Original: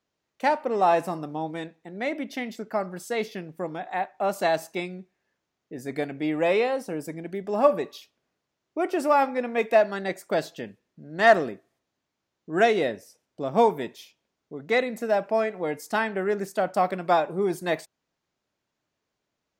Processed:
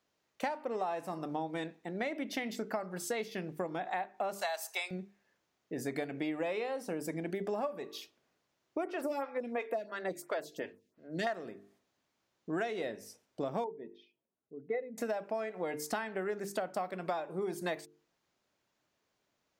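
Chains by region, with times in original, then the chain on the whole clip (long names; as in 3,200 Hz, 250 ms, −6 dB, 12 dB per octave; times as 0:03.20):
0:04.41–0:04.91: high-pass filter 640 Hz 24 dB per octave + high-shelf EQ 5,500 Hz +10 dB
0:08.84–0:11.27: notch filter 800 Hz, Q 10 + phaser with staggered stages 2.9 Hz
0:13.64–0:14.98: expanding power law on the bin magnitudes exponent 1.7 + high-frequency loss of the air 330 metres + expander for the loud parts, over −42 dBFS
whole clip: low-shelf EQ 170 Hz −4 dB; mains-hum notches 50/100/150/200/250/300/350/400/450 Hz; downward compressor 16 to 1, threshold −34 dBFS; level +2 dB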